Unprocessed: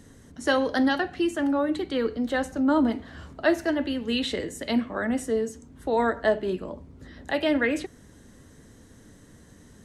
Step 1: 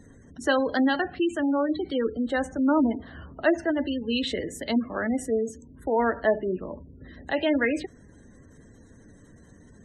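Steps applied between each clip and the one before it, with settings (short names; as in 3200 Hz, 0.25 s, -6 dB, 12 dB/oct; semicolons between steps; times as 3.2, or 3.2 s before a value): spectral gate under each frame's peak -25 dB strong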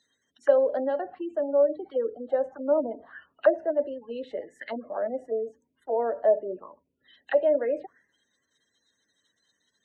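auto-wah 570–4100 Hz, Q 6.4, down, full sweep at -24 dBFS; gain +8 dB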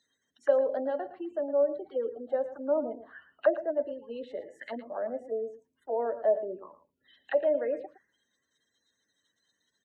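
echo 0.113 s -13.5 dB; gain -4 dB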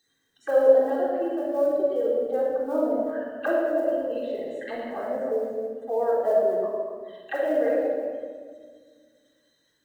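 reverse delay 0.183 s, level -9 dB; companded quantiser 8-bit; shoebox room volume 2200 m³, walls mixed, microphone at 3.7 m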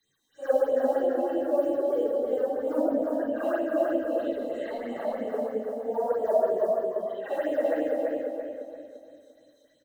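phase scrambler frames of 0.2 s; phaser stages 6, 3.1 Hz, lowest notch 100–1600 Hz; on a send: feedback echo 0.344 s, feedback 36%, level -3.5 dB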